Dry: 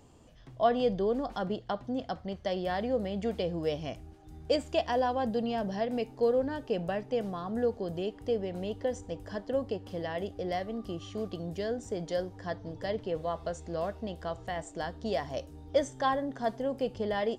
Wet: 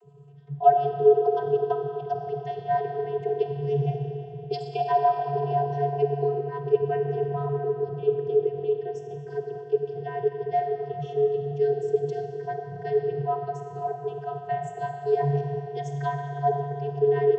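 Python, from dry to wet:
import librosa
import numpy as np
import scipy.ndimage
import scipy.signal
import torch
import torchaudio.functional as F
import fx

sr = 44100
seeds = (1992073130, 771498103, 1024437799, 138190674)

y = fx.envelope_sharpen(x, sr, power=1.5)
y = fx.rev_freeverb(y, sr, rt60_s=3.3, hf_ratio=0.85, predelay_ms=10, drr_db=3.5)
y = fx.vocoder(y, sr, bands=32, carrier='square', carrier_hz=142.0)
y = y * librosa.db_to_amplitude(6.0)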